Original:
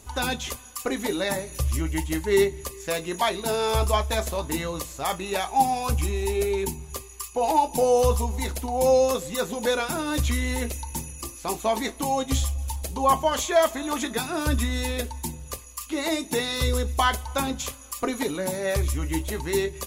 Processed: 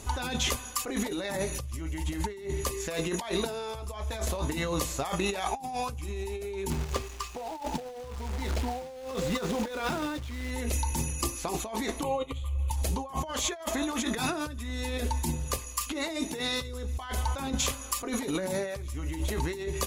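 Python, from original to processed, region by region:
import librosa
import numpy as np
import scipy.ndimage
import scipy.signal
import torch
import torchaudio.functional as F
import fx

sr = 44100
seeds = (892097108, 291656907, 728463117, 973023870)

y = fx.chain(x, sr, fx.air_absorb(metres=120.0),
    fx.quant_companded(bits=4), at=(6.7, 10.51))
y = fx.chain(y, sr, fx.lowpass(hz=2800.0, slope=6),
    fx.fixed_phaser(hz=1100.0, stages=8),
    fx.upward_expand(threshold_db=-39.0, expansion=1.5), at=(12.03, 12.71))
y = fx.high_shelf(y, sr, hz=11000.0, db=-8.5)
y = fx.over_compress(y, sr, threshold_db=-33.0, ratio=-1.0)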